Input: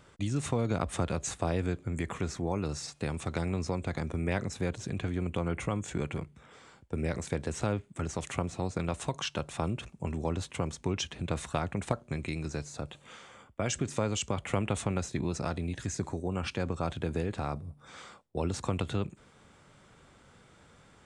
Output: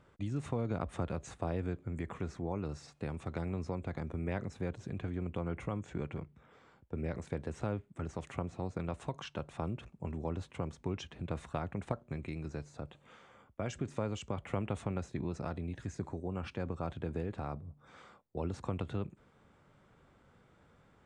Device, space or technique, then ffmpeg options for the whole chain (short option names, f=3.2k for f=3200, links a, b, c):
through cloth: -filter_complex "[0:a]asettb=1/sr,asplit=3[a][b][c];[a]atrim=end=5.794[d];[b]atrim=start=5.79:end=7.18,asetpts=PTS-STARTPTS,afade=t=in:d=0.004:c=qsin,afade=t=out:st=1.386:d=0.004:c=qsin,lowpass=7.9k[e];[c]atrim=start=7.176[f];[d][e]acrossfade=d=0.004:c1=hsin:c2=qsin[g];[g][f]acrossfade=d=0.004:c1=qsin:c2=hsin,highshelf=f=3.3k:g=-14,volume=-5dB"